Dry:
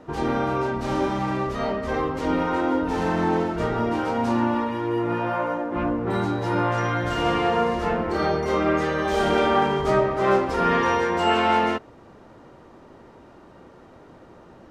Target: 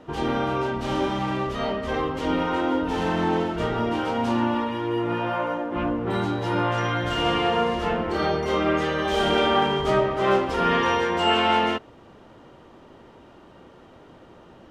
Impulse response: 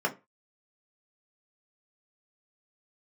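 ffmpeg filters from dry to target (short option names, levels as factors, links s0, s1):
-af "equalizer=f=3100:t=o:w=0.47:g=8,volume=0.891"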